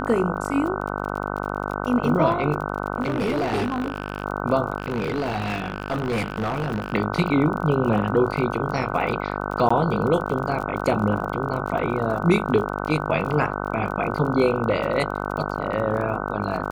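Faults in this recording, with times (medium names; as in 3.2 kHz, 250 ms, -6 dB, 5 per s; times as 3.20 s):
buzz 50 Hz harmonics 30 -28 dBFS
crackle 35 per s -31 dBFS
3.02–4.24 s: clipped -19.5 dBFS
4.78–6.95 s: clipped -20.5 dBFS
9.69–9.71 s: dropout 15 ms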